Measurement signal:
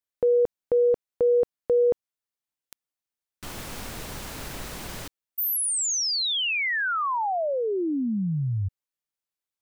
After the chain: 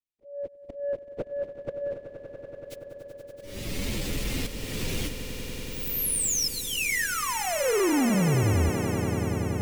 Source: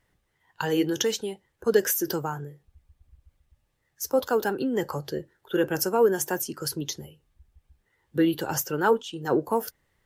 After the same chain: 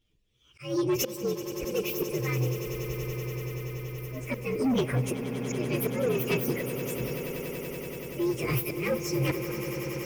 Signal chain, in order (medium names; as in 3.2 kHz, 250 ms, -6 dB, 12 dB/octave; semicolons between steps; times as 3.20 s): frequency axis rescaled in octaves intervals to 125%; treble shelf 6.8 kHz -6 dB; compression 1.5:1, threshold -43 dBFS; slow attack 420 ms; level rider gain up to 15 dB; high-order bell 1 kHz -12 dB; saturation -23 dBFS; echo with a slow build-up 95 ms, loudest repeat 8, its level -14 dB; trim +1.5 dB